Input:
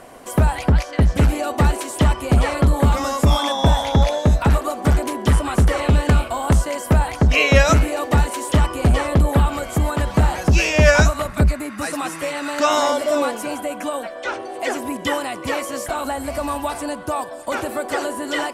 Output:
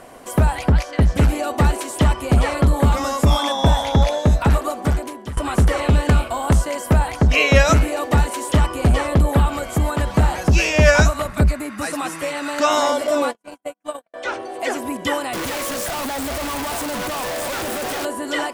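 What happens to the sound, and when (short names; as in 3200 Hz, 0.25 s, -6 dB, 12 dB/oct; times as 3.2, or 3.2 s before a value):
4.69–5.37 fade out linear, to -19.5 dB
13.07–14.14 gate -24 dBFS, range -54 dB
15.33–18.05 infinite clipping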